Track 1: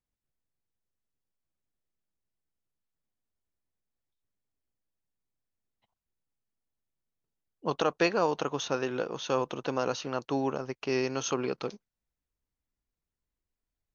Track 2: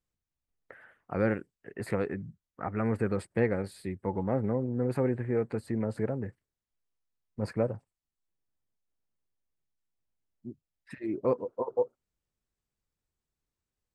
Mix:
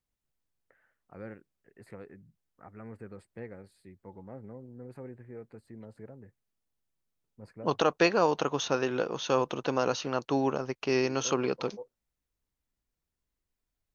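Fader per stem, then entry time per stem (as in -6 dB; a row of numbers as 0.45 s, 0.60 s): +2.0 dB, -16.0 dB; 0.00 s, 0.00 s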